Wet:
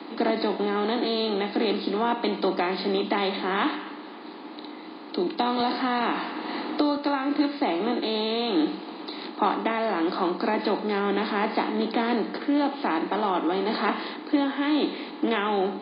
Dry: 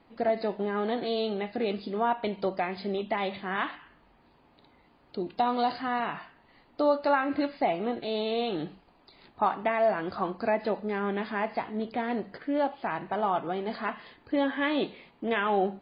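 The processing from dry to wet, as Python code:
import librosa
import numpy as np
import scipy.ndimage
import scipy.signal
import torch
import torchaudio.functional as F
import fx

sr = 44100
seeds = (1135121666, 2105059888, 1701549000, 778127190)

y = fx.bin_compress(x, sr, power=0.6)
y = fx.graphic_eq_31(y, sr, hz=(315, 630, 1600, 4000), db=(10, -8, -4, 8))
y = fx.rider(y, sr, range_db=4, speed_s=0.5)
y = scipy.signal.sosfilt(scipy.signal.butter(16, 180.0, 'highpass', fs=sr, output='sos'), y)
y = fx.echo_feedback(y, sr, ms=266, feedback_pct=59, wet_db=-20.0)
y = fx.band_squash(y, sr, depth_pct=70, at=(5.6, 6.97))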